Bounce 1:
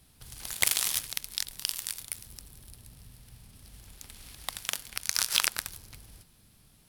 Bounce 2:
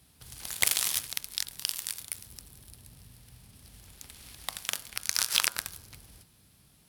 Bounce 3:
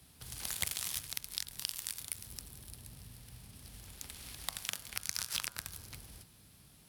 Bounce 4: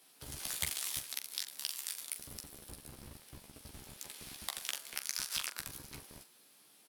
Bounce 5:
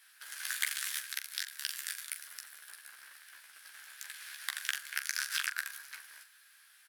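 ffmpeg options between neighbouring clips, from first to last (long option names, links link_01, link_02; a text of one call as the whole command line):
ffmpeg -i in.wav -af "highpass=54,bandreject=frequency=109.1:width_type=h:width=4,bandreject=frequency=218.2:width_type=h:width=4,bandreject=frequency=327.3:width_type=h:width=4,bandreject=frequency=436.4:width_type=h:width=4,bandreject=frequency=545.5:width_type=h:width=4,bandreject=frequency=654.6:width_type=h:width=4,bandreject=frequency=763.7:width_type=h:width=4,bandreject=frequency=872.8:width_type=h:width=4,bandreject=frequency=981.9:width_type=h:width=4,bandreject=frequency=1091:width_type=h:width=4,bandreject=frequency=1200.1:width_type=h:width=4,bandreject=frequency=1309.2:width_type=h:width=4,bandreject=frequency=1418.3:width_type=h:width=4,bandreject=frequency=1527.4:width_type=h:width=4,bandreject=frequency=1636.5:width_type=h:width=4" out.wav
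ffmpeg -i in.wav -filter_complex "[0:a]acrossover=split=180[link_01][link_02];[link_02]acompressor=threshold=-35dB:ratio=4[link_03];[link_01][link_03]amix=inputs=2:normalize=0,volume=1dB" out.wav
ffmpeg -i in.wav -filter_complex "[0:a]acrossover=split=260[link_01][link_02];[link_01]acrusher=bits=7:mix=0:aa=0.000001[link_03];[link_03][link_02]amix=inputs=2:normalize=0,aecho=1:1:14|43:0.631|0.316,volume=-2dB" out.wav
ffmpeg -i in.wav -af "highpass=frequency=1600:width_type=q:width=6.2" out.wav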